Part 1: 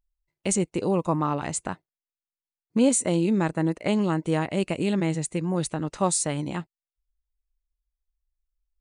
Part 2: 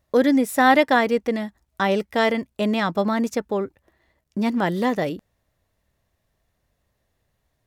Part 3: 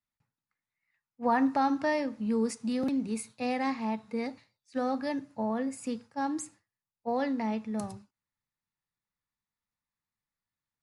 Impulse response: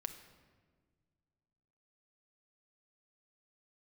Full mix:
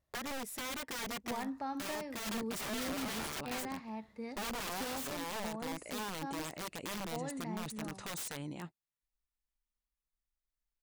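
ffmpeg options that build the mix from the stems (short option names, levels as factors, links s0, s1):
-filter_complex "[0:a]lowshelf=f=120:g=-6.5,adelay=2050,volume=0.501[s0];[1:a]alimiter=limit=0.299:level=0:latency=1:release=94,dynaudnorm=f=170:g=13:m=3.35,aeval=exprs='(tanh(2*val(0)+0.7)-tanh(0.7))/2':c=same,volume=0.398[s1];[2:a]adelay=50,volume=0.299[s2];[s0][s1]amix=inputs=2:normalize=0,aeval=exprs='(mod(21.1*val(0)+1,2)-1)/21.1':c=same,alimiter=level_in=3.55:limit=0.0631:level=0:latency=1:release=48,volume=0.282,volume=1[s3];[s2][s3]amix=inputs=2:normalize=0,alimiter=level_in=1.88:limit=0.0631:level=0:latency=1:release=430,volume=0.531"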